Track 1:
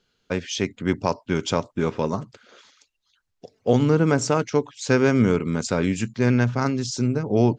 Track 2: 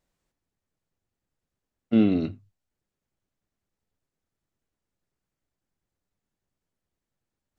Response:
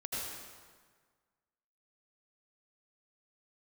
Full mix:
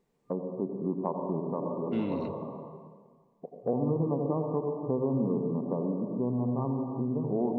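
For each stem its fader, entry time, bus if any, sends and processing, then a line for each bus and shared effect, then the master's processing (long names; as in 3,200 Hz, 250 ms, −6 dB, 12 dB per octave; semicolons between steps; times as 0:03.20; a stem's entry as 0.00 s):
−3.0 dB, 0.00 s, send −3 dB, brick-wall band-pass 120–1,200 Hz; automatic ducking −17 dB, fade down 0.50 s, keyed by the second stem
−3.5 dB, 0.00 s, send −21.5 dB, parametric band 2,100 Hz +4.5 dB 0.67 octaves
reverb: on, RT60 1.6 s, pre-delay 72 ms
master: downward compressor 2 to 1, threshold −34 dBFS, peak gain reduction 12 dB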